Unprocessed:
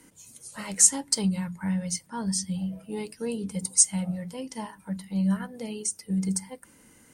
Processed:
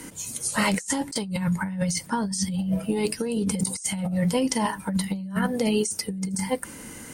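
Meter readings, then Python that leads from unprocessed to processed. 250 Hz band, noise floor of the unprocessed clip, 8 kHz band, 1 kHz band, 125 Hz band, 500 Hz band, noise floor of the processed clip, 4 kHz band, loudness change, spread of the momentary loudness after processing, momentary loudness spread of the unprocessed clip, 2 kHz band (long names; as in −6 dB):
+4.0 dB, −57 dBFS, −5.5 dB, +10.0 dB, +3.5 dB, +9.0 dB, −42 dBFS, +3.5 dB, 0.0 dB, 5 LU, 18 LU, +11.5 dB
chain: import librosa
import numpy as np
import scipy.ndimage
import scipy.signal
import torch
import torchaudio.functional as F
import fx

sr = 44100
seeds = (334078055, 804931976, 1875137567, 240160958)

y = fx.over_compress(x, sr, threshold_db=-36.0, ratio=-1.0)
y = F.gain(torch.from_numpy(y), 9.0).numpy()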